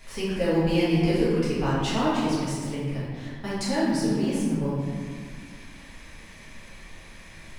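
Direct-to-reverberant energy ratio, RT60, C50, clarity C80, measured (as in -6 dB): -10.0 dB, 1.8 s, -2.0 dB, 1.0 dB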